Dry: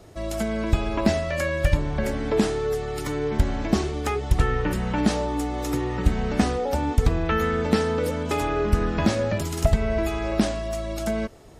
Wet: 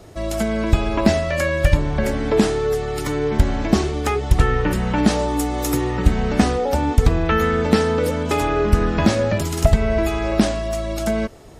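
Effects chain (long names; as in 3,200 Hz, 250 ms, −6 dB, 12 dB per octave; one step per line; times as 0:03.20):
0:05.19–0:05.91: high-shelf EQ 8,500 Hz +12 dB
level +5 dB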